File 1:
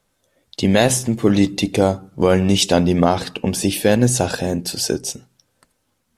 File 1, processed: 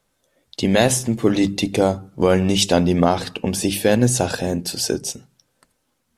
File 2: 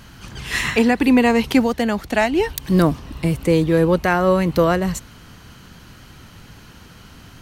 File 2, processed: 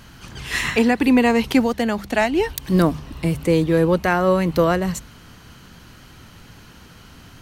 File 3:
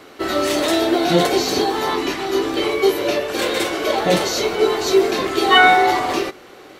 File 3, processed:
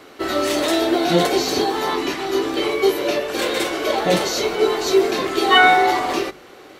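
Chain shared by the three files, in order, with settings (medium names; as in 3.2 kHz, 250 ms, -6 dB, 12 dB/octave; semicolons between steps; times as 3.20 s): hum notches 50/100/150/200 Hz; trim -1 dB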